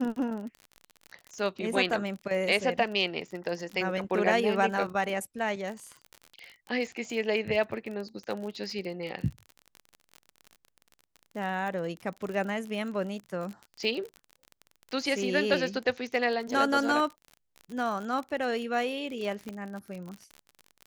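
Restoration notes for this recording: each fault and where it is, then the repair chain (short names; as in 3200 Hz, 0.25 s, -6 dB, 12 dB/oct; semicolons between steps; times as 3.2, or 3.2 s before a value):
crackle 40/s -35 dBFS
19.49 pop -24 dBFS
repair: de-click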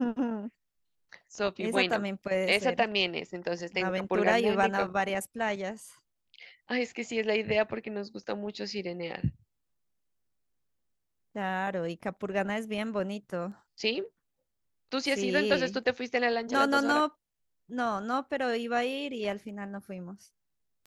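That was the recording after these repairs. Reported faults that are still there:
19.49 pop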